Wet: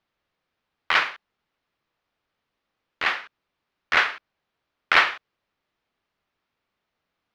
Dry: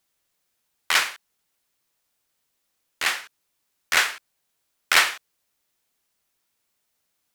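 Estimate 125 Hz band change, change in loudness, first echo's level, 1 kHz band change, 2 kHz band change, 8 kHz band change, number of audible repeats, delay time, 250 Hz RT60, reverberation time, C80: n/a, -0.5 dB, none, +3.0 dB, +1.0 dB, -18.0 dB, none, none, none, none, none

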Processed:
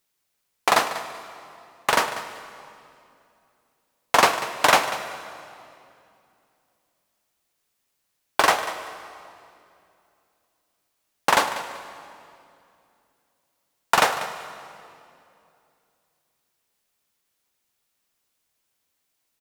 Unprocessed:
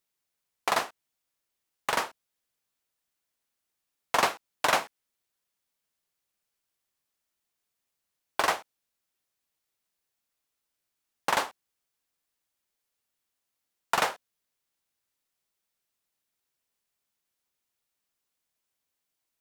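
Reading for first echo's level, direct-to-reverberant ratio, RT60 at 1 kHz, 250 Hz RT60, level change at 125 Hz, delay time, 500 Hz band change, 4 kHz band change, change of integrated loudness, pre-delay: -14.5 dB, 8.5 dB, 2.4 s, 3.2 s, +8.0 dB, 0.192 s, +8.0 dB, +8.0 dB, +7.0 dB, 3 ms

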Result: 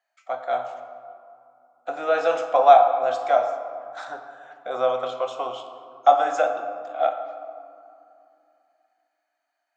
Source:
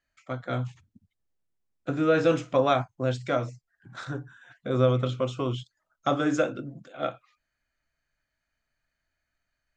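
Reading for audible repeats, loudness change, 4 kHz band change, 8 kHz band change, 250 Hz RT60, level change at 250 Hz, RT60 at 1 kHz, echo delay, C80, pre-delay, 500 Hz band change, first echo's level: none, +5.5 dB, 0.0 dB, n/a, 3.6 s, -14.0 dB, 2.8 s, none, 9.0 dB, 4 ms, +5.0 dB, none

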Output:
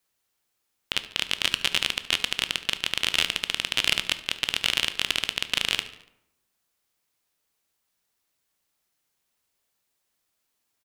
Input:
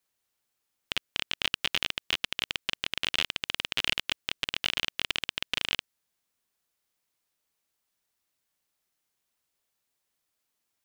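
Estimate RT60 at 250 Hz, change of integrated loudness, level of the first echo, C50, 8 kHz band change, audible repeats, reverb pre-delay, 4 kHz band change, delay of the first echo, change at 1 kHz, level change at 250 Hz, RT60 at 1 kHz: 0.90 s, +5.0 dB, -17.0 dB, 12.5 dB, +9.0 dB, 4, 13 ms, +5.0 dB, 72 ms, +4.0 dB, +4.0 dB, 0.85 s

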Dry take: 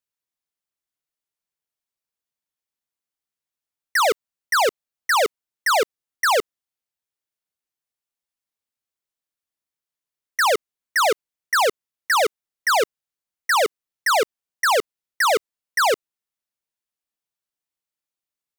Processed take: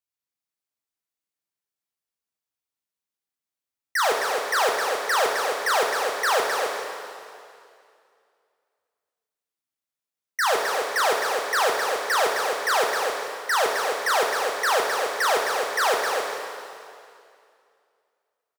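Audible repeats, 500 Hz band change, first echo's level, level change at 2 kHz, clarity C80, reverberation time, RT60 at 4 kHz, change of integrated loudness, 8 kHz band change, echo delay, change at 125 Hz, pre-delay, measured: 1, -1.0 dB, -6.0 dB, -1.5 dB, 1.0 dB, 2.4 s, 2.2 s, -2.0 dB, -1.0 dB, 0.263 s, n/a, 5 ms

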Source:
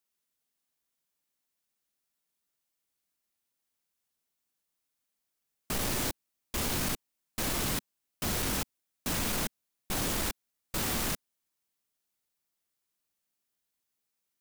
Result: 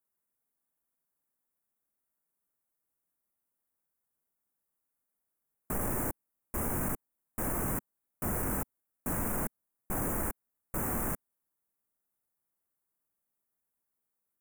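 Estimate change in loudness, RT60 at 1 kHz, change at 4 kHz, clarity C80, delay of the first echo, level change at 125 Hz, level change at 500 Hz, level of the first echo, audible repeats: -2.0 dB, none, -26.0 dB, none, none, 0.0 dB, 0.0 dB, none, none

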